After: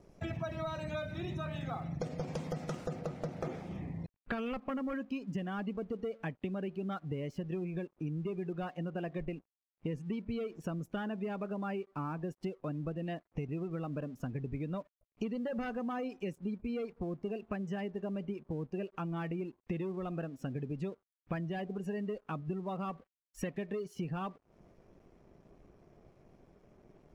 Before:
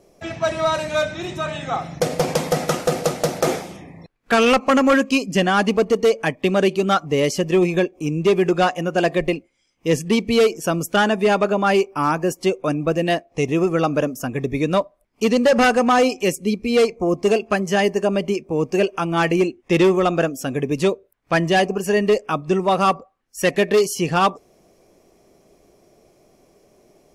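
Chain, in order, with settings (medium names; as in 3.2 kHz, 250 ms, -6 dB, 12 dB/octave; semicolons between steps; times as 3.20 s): spectral gate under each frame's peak -30 dB strong; tone controls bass +12 dB, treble -3 dB, from 2.95 s treble -13 dB; compression 8:1, threshold -28 dBFS, peak gain reduction 19.5 dB; crossover distortion -57.5 dBFS; trim -7 dB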